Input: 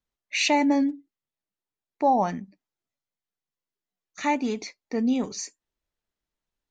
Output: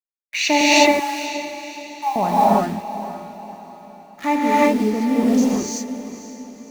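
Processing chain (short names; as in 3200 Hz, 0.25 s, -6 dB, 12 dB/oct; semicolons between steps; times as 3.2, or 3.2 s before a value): Wiener smoothing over 15 samples; expander -51 dBFS; in parallel at -6 dB: requantised 6-bit, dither none; 0.61–2.16 on the sum: brick-wall FIR high-pass 800 Hz; on a send: diffused feedback echo 0.525 s, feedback 45%, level -13 dB; on the sum: non-linear reverb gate 0.4 s rising, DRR -7.5 dB; gain -1 dB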